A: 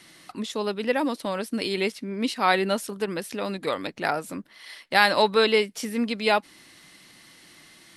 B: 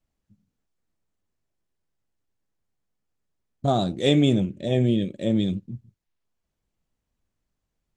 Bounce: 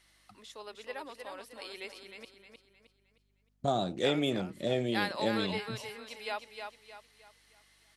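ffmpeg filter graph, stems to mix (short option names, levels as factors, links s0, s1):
-filter_complex "[0:a]highpass=500,volume=0.188,asplit=3[s0][s1][s2];[s0]atrim=end=2.25,asetpts=PTS-STARTPTS,afade=t=out:st=2.246:d=0.004:c=hsin[s3];[s1]atrim=start=2.25:end=3.94,asetpts=PTS-STARTPTS,volume=0[s4];[s2]atrim=start=3.94,asetpts=PTS-STARTPTS,afade=t=in:d=0.004:c=hsin[s5];[s3][s4][s5]concat=n=3:v=0:a=1,asplit=2[s6][s7];[s7]volume=0.501[s8];[1:a]acrossover=split=440|3700[s9][s10][s11];[s9]acompressor=threshold=0.0251:ratio=4[s12];[s10]acompressor=threshold=0.0501:ratio=4[s13];[s11]acompressor=threshold=0.00501:ratio=4[s14];[s12][s13][s14]amix=inputs=3:normalize=0,volume=0.841[s15];[s8]aecho=0:1:310|620|930|1240|1550:1|0.38|0.144|0.0549|0.0209[s16];[s6][s15][s16]amix=inputs=3:normalize=0,lowshelf=f=89:g=-10.5,aeval=exprs='val(0)+0.000224*(sin(2*PI*50*n/s)+sin(2*PI*2*50*n/s)/2+sin(2*PI*3*50*n/s)/3+sin(2*PI*4*50*n/s)/4+sin(2*PI*5*50*n/s)/5)':c=same"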